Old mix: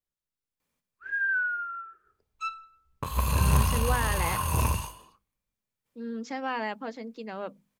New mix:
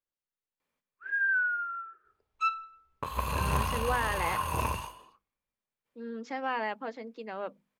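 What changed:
second sound +5.5 dB; master: add tone controls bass -9 dB, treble -9 dB

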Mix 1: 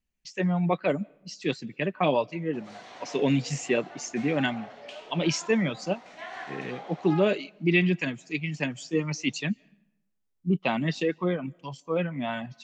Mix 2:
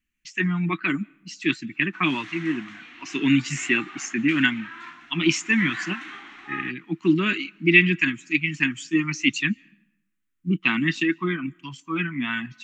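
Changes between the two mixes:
background: entry -0.60 s; master: add FFT filter 160 Hz 0 dB, 330 Hz +8 dB, 520 Hz -29 dB, 1.2 kHz +7 dB, 1.8 kHz +11 dB, 2.7 kHz +10 dB, 4.8 kHz -1 dB, 7.1 kHz +5 dB

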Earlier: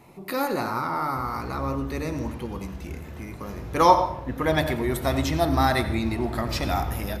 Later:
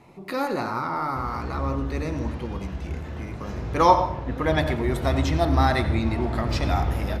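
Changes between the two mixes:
background +5.5 dB; master: add distance through air 51 m

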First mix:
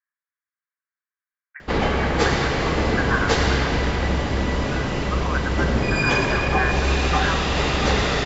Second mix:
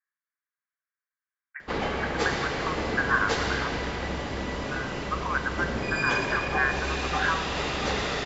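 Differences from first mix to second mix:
background -6.5 dB; master: add bass shelf 160 Hz -7.5 dB

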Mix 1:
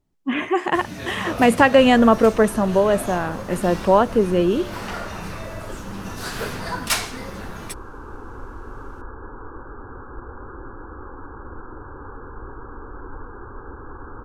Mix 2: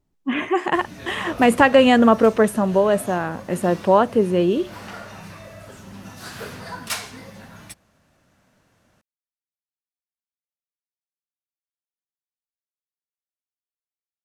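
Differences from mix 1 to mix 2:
first sound -5.5 dB; second sound: muted

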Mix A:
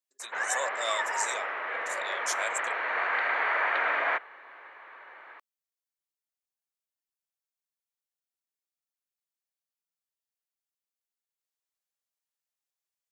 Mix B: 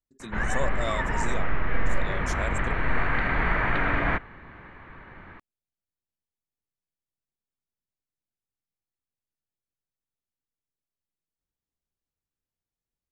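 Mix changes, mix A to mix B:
speech: add tilt EQ -3 dB/octave; master: remove high-pass 510 Hz 24 dB/octave

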